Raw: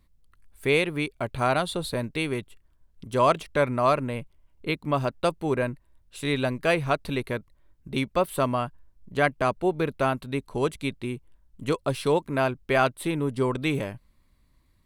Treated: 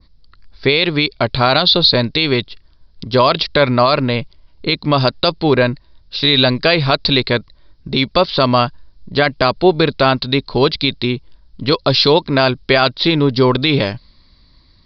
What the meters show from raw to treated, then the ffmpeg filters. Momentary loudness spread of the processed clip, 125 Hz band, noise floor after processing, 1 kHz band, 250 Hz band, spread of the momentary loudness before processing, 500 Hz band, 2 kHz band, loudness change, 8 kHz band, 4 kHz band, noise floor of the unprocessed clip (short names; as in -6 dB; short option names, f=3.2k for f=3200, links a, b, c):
9 LU, +11.5 dB, -50 dBFS, +9.5 dB, +11.5 dB, 11 LU, +10.0 dB, +11.0 dB, +12.0 dB, n/a, +22.0 dB, -64 dBFS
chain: -af "aexciter=amount=3.5:drive=9:freq=4k,aresample=11025,aresample=44100,adynamicequalizer=threshold=0.0112:dfrequency=3500:dqfactor=0.87:tfrequency=3500:tqfactor=0.87:attack=5:release=100:ratio=0.375:range=3:mode=boostabove:tftype=bell,alimiter=level_in=14dB:limit=-1dB:release=50:level=0:latency=1,volume=-1dB"